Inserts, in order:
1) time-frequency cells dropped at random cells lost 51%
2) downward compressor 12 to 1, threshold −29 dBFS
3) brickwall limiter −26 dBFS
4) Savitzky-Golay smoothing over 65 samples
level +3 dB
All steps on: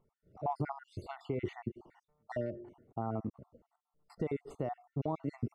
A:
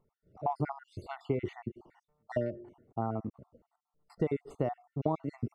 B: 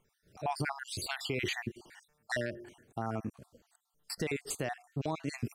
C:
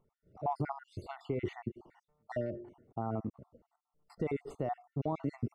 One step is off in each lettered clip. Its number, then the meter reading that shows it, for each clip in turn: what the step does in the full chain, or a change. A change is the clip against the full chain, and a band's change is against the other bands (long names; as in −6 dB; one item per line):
3, change in crest factor +5.5 dB
4, 2 kHz band +15.0 dB
2, average gain reduction 3.5 dB